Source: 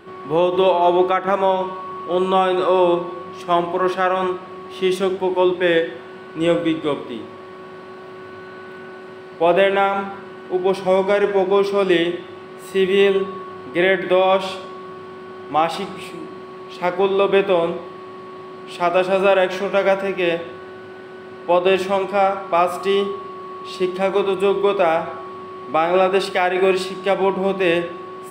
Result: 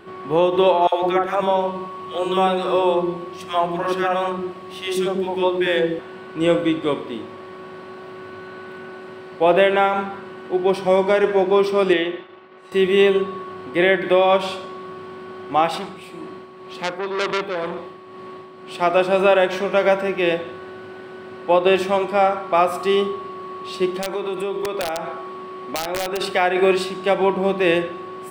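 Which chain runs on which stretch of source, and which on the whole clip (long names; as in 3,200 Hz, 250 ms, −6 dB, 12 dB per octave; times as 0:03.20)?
0:00.87–0:05.99: high-shelf EQ 8,100 Hz +4.5 dB + three-band delay without the direct sound highs, mids, lows 50/150 ms, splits 400/1,400 Hz
0:11.93–0:12.72: low-pass filter 3,500 Hz + downward expander −32 dBFS + low-shelf EQ 230 Hz −12 dB
0:15.78–0:18.75: amplitude tremolo 2 Hz, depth 52% + saturating transformer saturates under 2,600 Hz
0:23.97–0:26.21: high-pass filter 150 Hz + wrap-around overflow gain 7 dB + downward compressor 4 to 1, threshold −22 dBFS
whole clip: no processing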